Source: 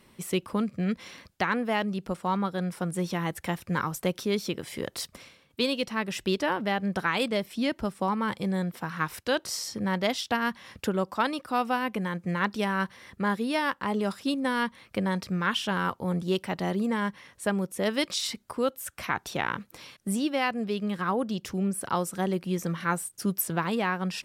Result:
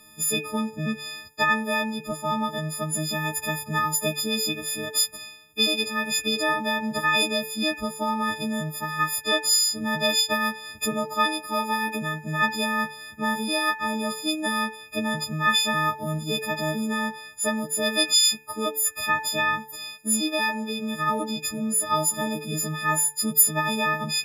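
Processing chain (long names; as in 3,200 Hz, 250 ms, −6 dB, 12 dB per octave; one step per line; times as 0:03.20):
every partial snapped to a pitch grid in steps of 6 semitones
hum removal 146.1 Hz, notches 22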